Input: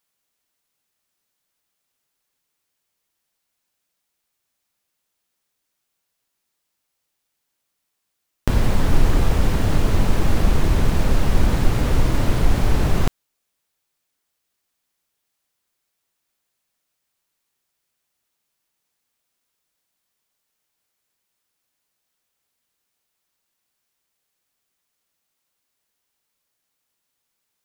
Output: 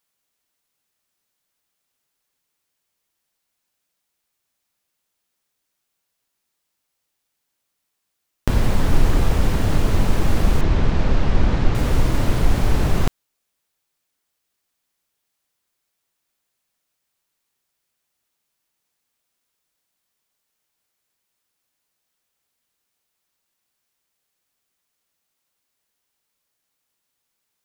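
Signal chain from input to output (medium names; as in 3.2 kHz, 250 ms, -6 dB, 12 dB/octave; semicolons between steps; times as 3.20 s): 10.61–11.75 s: Bessel low-pass 4.4 kHz, order 4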